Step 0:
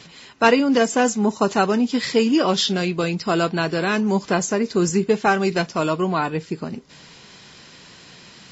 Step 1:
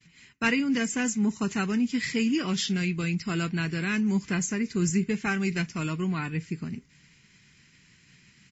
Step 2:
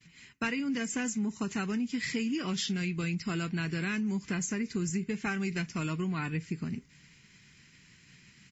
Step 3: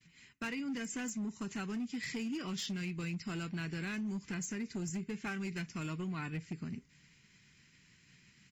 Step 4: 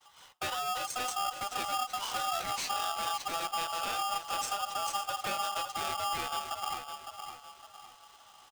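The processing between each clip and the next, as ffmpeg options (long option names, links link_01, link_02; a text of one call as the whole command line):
ffmpeg -i in.wav -af "agate=range=-33dB:threshold=-38dB:ratio=3:detection=peak,firequalizer=gain_entry='entry(130,0);entry(570,-22);entry(2100,0);entry(3600,-12);entry(6900,-4)':delay=0.05:min_phase=1" out.wav
ffmpeg -i in.wav -af "acompressor=threshold=-29dB:ratio=6" out.wav
ffmpeg -i in.wav -af "volume=27.5dB,asoftclip=hard,volume=-27.5dB,volume=-6dB" out.wav
ffmpeg -i in.wav -filter_complex "[0:a]asplit=2[link_01][link_02];[link_02]adelay=559,lowpass=frequency=3000:poles=1,volume=-7.5dB,asplit=2[link_03][link_04];[link_04]adelay=559,lowpass=frequency=3000:poles=1,volume=0.4,asplit=2[link_05][link_06];[link_06]adelay=559,lowpass=frequency=3000:poles=1,volume=0.4,asplit=2[link_07][link_08];[link_08]adelay=559,lowpass=frequency=3000:poles=1,volume=0.4,asplit=2[link_09][link_10];[link_10]adelay=559,lowpass=frequency=3000:poles=1,volume=0.4[link_11];[link_01][link_03][link_05][link_07][link_09][link_11]amix=inputs=6:normalize=0,aeval=exprs='val(0)*sgn(sin(2*PI*1000*n/s))':channel_layout=same,volume=4dB" out.wav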